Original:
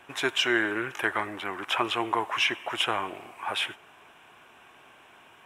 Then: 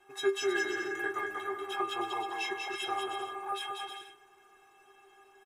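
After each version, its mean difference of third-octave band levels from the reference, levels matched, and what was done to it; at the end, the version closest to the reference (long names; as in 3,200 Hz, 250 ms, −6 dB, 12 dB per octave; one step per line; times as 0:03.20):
6.5 dB: parametric band 2,600 Hz −6.5 dB 0.86 octaves
stiff-string resonator 390 Hz, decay 0.2 s, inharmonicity 0.008
bouncing-ball delay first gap 190 ms, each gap 0.65×, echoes 5
level +7.5 dB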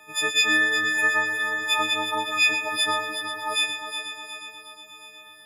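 10.5 dB: every partial snapped to a pitch grid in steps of 6 semitones
on a send: echo machine with several playback heads 121 ms, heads first and third, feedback 69%, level −9.5 dB
on the sum: level −3.5 dB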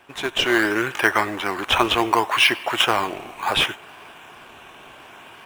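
4.0 dB: parametric band 3,200 Hz +2.5 dB
automatic gain control gain up to 10 dB
in parallel at −9 dB: sample-and-hold swept by an LFO 12×, swing 100% 0.69 Hz
on the sum: level −1.5 dB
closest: third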